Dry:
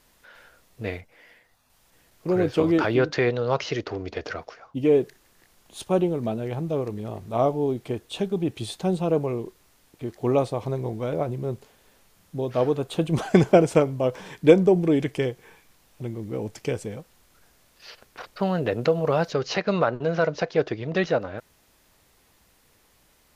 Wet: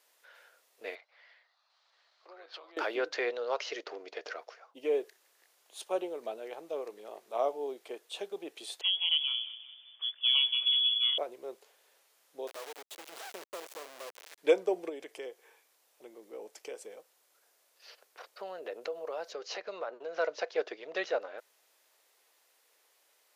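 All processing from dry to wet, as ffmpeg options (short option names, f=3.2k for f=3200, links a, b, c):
-filter_complex "[0:a]asettb=1/sr,asplit=3[a][b][c];[a]atrim=end=0.954[d];[b]atrim=start=0.95:end=2.77,asetpts=PTS-STARTPTS,afade=t=in:d=0.004:c=qsin,afade=t=out:st=1.816:d=0.004:c=qsin,acompressor=threshold=-32dB:ratio=6:attack=3.2:release=140:knee=1:detection=peak,highpass=f=450:w=0.5412,highpass=f=450:w=1.3066,equalizer=f=470:t=q:w=4:g=-9,equalizer=f=1.2k:t=q:w=4:g=6,equalizer=f=2.6k:t=q:w=4:g=-3,equalizer=f=4.2k:t=q:w=4:g=8,lowpass=f=5k:w=0.5412,lowpass=f=5k:w=1.3066[e];[c]atrim=start=2.766[f];[d][e]acrossfade=d=0.004:c1=hsin:c2=qsin[g];[g][f]acrossfade=d=0.004:c1=qsin:c2=hsin,asettb=1/sr,asplit=3[h][i][j];[h]atrim=end=8.814[k];[i]atrim=start=8.81:end=11.18,asetpts=PTS-STARTPTS,afade=t=in:d=0.004:c=qsin,afade=t=out:st=2.366:d=0.004:c=qsin,asubboost=boost=10:cutoff=140,aecho=1:1:190|380|570|760:0.178|0.0854|0.041|0.0197,atrim=end_sample=104517,lowpass=f=3k:t=q:w=0.5098,lowpass=f=3k:t=q:w=0.6013,lowpass=f=3k:t=q:w=0.9,lowpass=f=3k:t=q:w=2.563,afreqshift=-3500[l];[j]atrim=start=11.176[m];[k][l]acrossfade=d=0.004:c1=hsin:c2=qsin[n];[n][m]acrossfade=d=0.004:c1=qsin:c2=hsin,asettb=1/sr,asplit=3[o][p][q];[o]atrim=end=12.474[r];[p]atrim=start=12.47:end=14.38,asetpts=PTS-STARTPTS,afade=t=in:d=0.004:c=qsin,afade=t=out:st=1.906:d=0.004:c=qsin,highshelf=f=3.8k:g=-3,acompressor=threshold=-29dB:ratio=2.5:attack=3.2:release=140:knee=1:detection=peak,acrusher=bits=3:dc=4:mix=0:aa=0.000001[s];[q]atrim=start=14.376[t];[r][s]acrossfade=d=0.004:c1=hsin:c2=qsin[u];[u][t]acrossfade=d=0.004:c1=qsin:c2=hsin,asettb=1/sr,asplit=3[v][w][x];[v]atrim=end=14.894[y];[w]atrim=start=14.89:end=20.18,asetpts=PTS-STARTPTS,afade=t=in:d=0.004:c=qsin,afade=t=out:st=5.286:d=0.004:c=qsin,equalizer=f=2.5k:t=o:w=2.6:g=-3.5,acompressor=threshold=-28dB:ratio=2:attack=3.2:release=140:knee=1:detection=peak,highpass=54[z];[x]atrim=start=20.176[aa];[y][z]acrossfade=d=0.004:c1=hsin:c2=qsin[ab];[ab][aa]acrossfade=d=0.004:c1=qsin:c2=hsin,highpass=f=450:w=0.5412,highpass=f=450:w=1.3066,equalizer=f=1k:t=o:w=1.5:g=-2.5,volume=-6dB"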